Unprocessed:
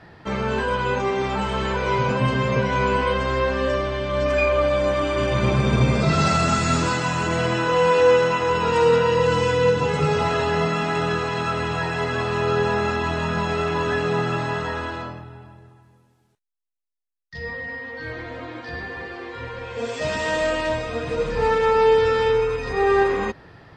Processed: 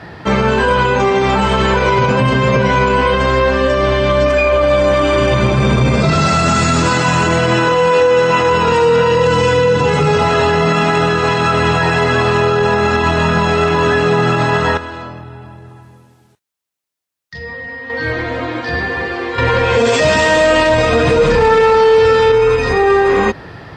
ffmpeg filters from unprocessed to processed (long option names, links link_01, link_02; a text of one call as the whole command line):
ffmpeg -i in.wav -filter_complex "[0:a]asettb=1/sr,asplit=3[link_01][link_02][link_03];[link_01]atrim=end=14.774[link_04];[link_02]atrim=start=14.77:end=17.9,asetpts=PTS-STARTPTS,afade=type=in:duration=0.004:curve=qsin,afade=type=out:start_time=3.126:duration=0.004:curve=qsin,acompressor=threshold=-46dB:ratio=2:attack=3.2:release=140:knee=1:detection=peak[link_05];[link_03]atrim=start=17.896[link_06];[link_04][link_05]acrossfade=duration=0.004:curve1=hsin:curve2=qsin[link_07];[link_07][link_06]acrossfade=duration=0.004:curve1=qsin:curve2=hsin,asettb=1/sr,asplit=3[link_08][link_09][link_10];[link_08]atrim=end=19.384[link_11];[link_09]atrim=start=19.38:end=22.32,asetpts=PTS-STARTPTS,afade=type=in:duration=0.004:curve=qsin,afade=type=out:start_time=2.936:duration=0.004:curve=qsin,aeval=exprs='0.447*sin(PI/2*1.78*val(0)/0.447)':channel_layout=same[link_12];[link_10]atrim=start=22.316[link_13];[link_11][link_12]acrossfade=duration=0.004:curve1=hsin:curve2=qsin[link_14];[link_14][link_13]acrossfade=duration=0.004:curve1=qsin:curve2=hsin,highpass=44,alimiter=level_in=17dB:limit=-1dB:release=50:level=0:latency=1,volume=-3.5dB" out.wav